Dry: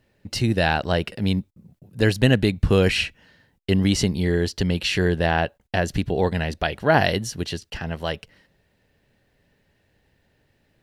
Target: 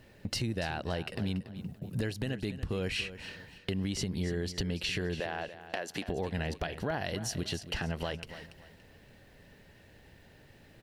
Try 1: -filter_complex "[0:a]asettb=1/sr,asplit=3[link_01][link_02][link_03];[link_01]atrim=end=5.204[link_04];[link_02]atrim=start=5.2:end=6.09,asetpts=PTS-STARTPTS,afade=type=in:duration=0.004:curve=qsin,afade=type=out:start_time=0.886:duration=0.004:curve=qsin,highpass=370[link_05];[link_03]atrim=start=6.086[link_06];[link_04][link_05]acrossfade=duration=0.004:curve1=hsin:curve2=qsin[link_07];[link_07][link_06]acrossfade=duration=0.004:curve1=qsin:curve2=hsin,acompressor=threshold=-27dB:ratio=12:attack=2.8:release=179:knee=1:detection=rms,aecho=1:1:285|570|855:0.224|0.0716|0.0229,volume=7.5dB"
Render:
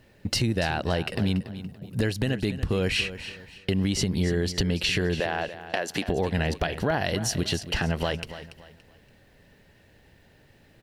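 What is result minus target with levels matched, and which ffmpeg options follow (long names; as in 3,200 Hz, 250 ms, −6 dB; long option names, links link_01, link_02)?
downward compressor: peak gain reduction −8 dB
-filter_complex "[0:a]asettb=1/sr,asplit=3[link_01][link_02][link_03];[link_01]atrim=end=5.204[link_04];[link_02]atrim=start=5.2:end=6.09,asetpts=PTS-STARTPTS,afade=type=in:duration=0.004:curve=qsin,afade=type=out:start_time=0.886:duration=0.004:curve=qsin,highpass=370[link_05];[link_03]atrim=start=6.086[link_06];[link_04][link_05]acrossfade=duration=0.004:curve1=hsin:curve2=qsin[link_07];[link_07][link_06]acrossfade=duration=0.004:curve1=qsin:curve2=hsin,acompressor=threshold=-36dB:ratio=12:attack=2.8:release=179:knee=1:detection=rms,aecho=1:1:285|570|855:0.224|0.0716|0.0229,volume=7.5dB"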